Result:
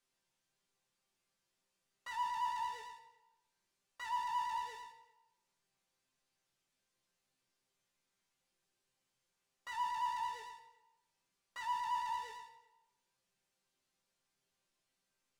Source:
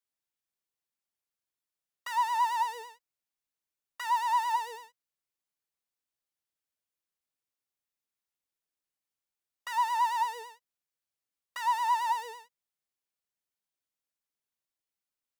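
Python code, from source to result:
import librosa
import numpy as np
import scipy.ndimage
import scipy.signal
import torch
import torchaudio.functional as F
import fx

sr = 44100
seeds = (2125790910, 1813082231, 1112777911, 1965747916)

y = scipy.signal.sosfilt(scipy.signal.butter(2, 8500.0, 'lowpass', fs=sr, output='sos'), x)
y = fx.low_shelf(y, sr, hz=370.0, db=6.0)
y = fx.resonator_bank(y, sr, root=48, chord='sus4', decay_s=0.25)
y = fx.room_flutter(y, sr, wall_m=10.7, rt60_s=0.29)
y = fx.rev_plate(y, sr, seeds[0], rt60_s=0.84, hf_ratio=0.85, predelay_ms=0, drr_db=12.5)
y = fx.power_curve(y, sr, exponent=0.7)
y = y * 10.0 ** (-1.0 / 20.0)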